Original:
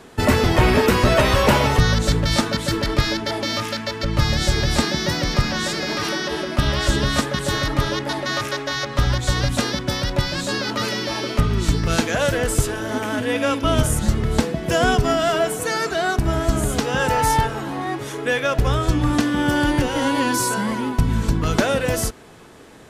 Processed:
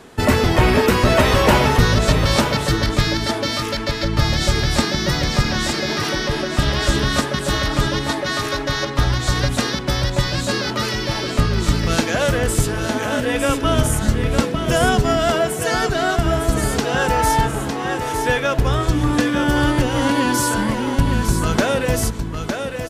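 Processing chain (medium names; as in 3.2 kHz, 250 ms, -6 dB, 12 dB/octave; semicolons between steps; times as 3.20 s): delay 907 ms -6.5 dB; trim +1 dB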